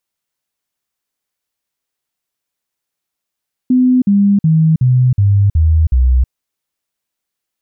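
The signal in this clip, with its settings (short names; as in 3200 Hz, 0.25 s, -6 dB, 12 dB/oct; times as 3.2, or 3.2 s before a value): stepped sine 253 Hz down, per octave 3, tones 7, 0.32 s, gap 0.05 s -7 dBFS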